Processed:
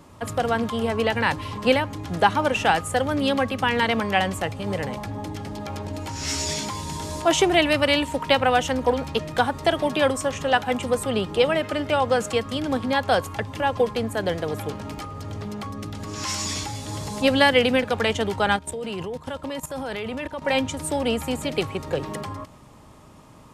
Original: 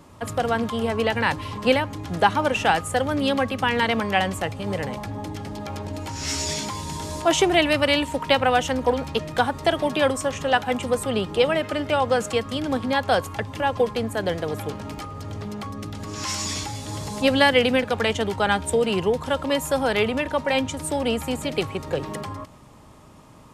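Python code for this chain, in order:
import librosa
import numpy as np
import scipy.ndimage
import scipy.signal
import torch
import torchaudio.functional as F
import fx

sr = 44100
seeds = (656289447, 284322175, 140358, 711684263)

y = fx.level_steps(x, sr, step_db=15, at=(18.56, 20.42))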